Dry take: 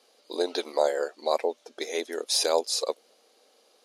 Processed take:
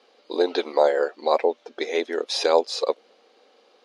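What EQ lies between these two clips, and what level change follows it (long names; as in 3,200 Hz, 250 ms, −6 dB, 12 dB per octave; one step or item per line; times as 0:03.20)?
low-pass filter 3,300 Hz 12 dB per octave
notch filter 630 Hz, Q 12
+6.5 dB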